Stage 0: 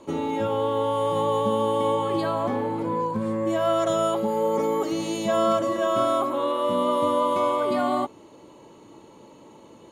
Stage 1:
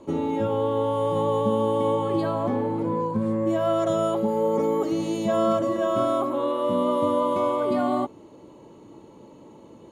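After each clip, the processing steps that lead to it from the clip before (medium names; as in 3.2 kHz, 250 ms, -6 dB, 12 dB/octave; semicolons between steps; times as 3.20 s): tilt shelf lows +4.5 dB, about 730 Hz; trim -1 dB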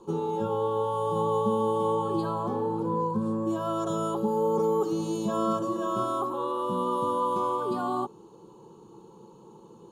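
static phaser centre 410 Hz, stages 8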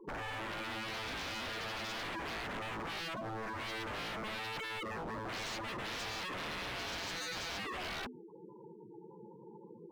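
hum notches 50/100/150/200/250 Hz; spectral gate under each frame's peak -10 dB strong; wavefolder -34.5 dBFS; trim -1.5 dB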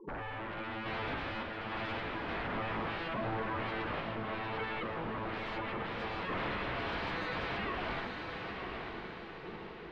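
random-step tremolo; distance through air 430 m; on a send: echo that smears into a reverb 960 ms, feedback 46%, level -4 dB; on the sum: trim +7 dB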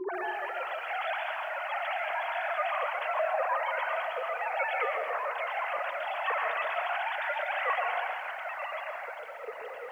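formants replaced by sine waves; on a send at -4.5 dB: reverberation RT60 1.1 s, pre-delay 107 ms; on the sum: bit-crushed delay 136 ms, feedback 35%, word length 10-bit, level -11 dB; trim +4 dB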